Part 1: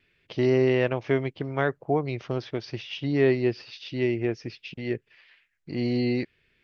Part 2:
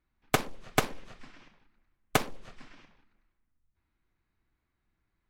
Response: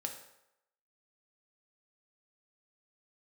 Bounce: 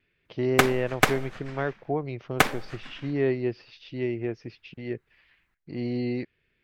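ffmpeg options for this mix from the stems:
-filter_complex "[0:a]highshelf=f=4.1k:g=-10,volume=-3.5dB[a];[1:a]equalizer=f=1.8k:w=1.1:g=7,adelay=250,volume=1dB,asplit=2[b][c];[c]volume=-9.5dB[d];[2:a]atrim=start_sample=2205[e];[d][e]afir=irnorm=-1:irlink=0[f];[a][b][f]amix=inputs=3:normalize=0"

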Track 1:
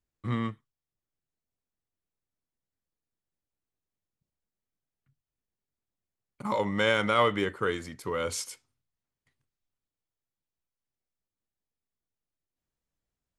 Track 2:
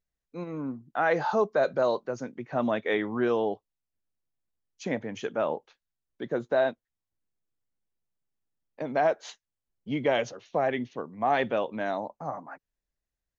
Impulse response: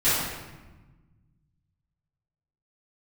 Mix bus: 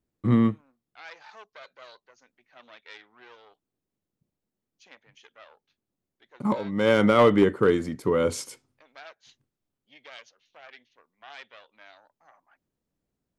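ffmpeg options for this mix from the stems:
-filter_complex "[0:a]equalizer=f=260:t=o:w=3:g=13.5,asoftclip=type=hard:threshold=-9.5dB,volume=-1dB[a];[1:a]aeval=exprs='0.211*(cos(1*acos(clip(val(0)/0.211,-1,1)))-cos(1*PI/2))+0.0473*(cos(4*acos(clip(val(0)/0.211,-1,1)))-cos(4*PI/2))':c=same,bandpass=f=3.7k:t=q:w=1:csg=0,volume=-10.5dB,asplit=2[b][c];[c]apad=whole_len=590377[d];[a][d]sidechaincompress=threshold=-53dB:ratio=8:attack=16:release=286[e];[e][b]amix=inputs=2:normalize=0"

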